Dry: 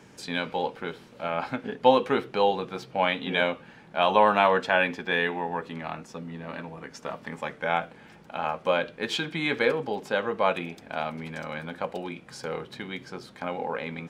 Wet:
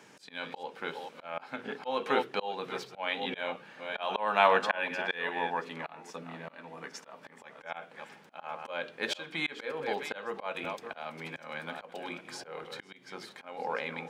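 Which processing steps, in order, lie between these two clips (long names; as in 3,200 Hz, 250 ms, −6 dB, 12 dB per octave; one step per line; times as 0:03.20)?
delay that plays each chunk backwards 407 ms, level −12 dB
high-pass filter 130 Hz 12 dB per octave
low-shelf EQ 330 Hz −10 dB
mains-hum notches 60/120/180/240/300/360/420 Hz
volume swells 271 ms
0:10.64–0:12.64: multiband upward and downward compressor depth 40%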